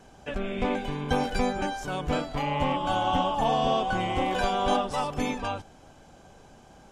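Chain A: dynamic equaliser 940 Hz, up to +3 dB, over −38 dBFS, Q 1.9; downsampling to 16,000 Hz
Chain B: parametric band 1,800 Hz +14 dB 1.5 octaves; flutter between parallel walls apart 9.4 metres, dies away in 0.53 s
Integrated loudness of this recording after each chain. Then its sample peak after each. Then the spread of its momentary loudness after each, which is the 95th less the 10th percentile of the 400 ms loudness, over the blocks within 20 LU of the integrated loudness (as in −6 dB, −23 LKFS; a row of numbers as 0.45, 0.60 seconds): −26.5, −21.5 LKFS; −11.5, −7.0 dBFS; 8, 7 LU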